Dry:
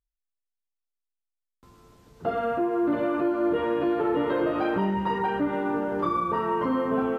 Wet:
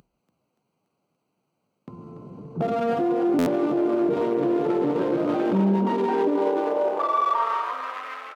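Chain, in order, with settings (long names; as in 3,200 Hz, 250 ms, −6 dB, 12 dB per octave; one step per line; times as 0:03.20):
adaptive Wiener filter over 25 samples
in parallel at +2.5 dB: downward compressor 16 to 1, threshold −37 dBFS, peak gain reduction 16 dB
on the sum: brickwall limiter −21 dBFS, peak gain reduction 7 dB
upward compression, threshold −40 dBFS
high-pass filter sweep 160 Hz → 1,900 Hz, 0:04.63–0:06.94
tempo change 0.86×
on a send: echo with shifted repeats 287 ms, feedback 59%, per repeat +43 Hz, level −11 dB
on the sum: buffer that repeats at 0:03.38, samples 512, times 6
level +3 dB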